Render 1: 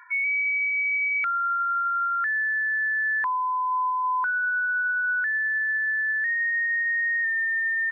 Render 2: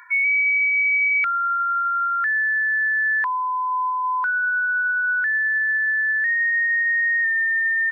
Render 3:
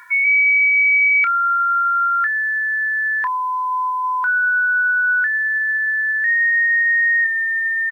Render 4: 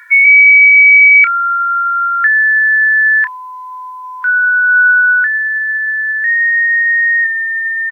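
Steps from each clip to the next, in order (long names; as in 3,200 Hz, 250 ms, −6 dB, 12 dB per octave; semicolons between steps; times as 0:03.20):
high-shelf EQ 2,100 Hz +10.5 dB
bit reduction 10 bits; double-tracking delay 29 ms −12 dB; level +3 dB
high-pass filter sweep 1,700 Hz → 800 Hz, 0:04.62–0:05.56; dynamic equaliser 2,300 Hz, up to +5 dB, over −22 dBFS, Q 1.2; level −1 dB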